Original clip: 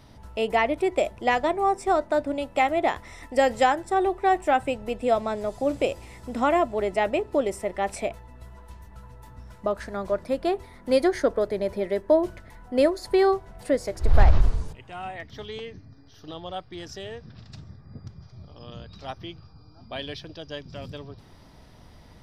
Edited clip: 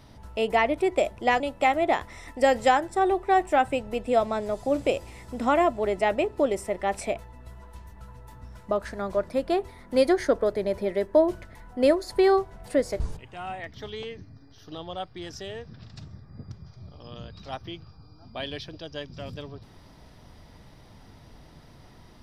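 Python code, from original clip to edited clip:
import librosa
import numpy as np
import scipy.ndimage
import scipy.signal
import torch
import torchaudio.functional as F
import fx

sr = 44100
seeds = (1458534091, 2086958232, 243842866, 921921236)

y = fx.edit(x, sr, fx.cut(start_s=1.4, length_s=0.95),
    fx.cut(start_s=13.95, length_s=0.61), tone=tone)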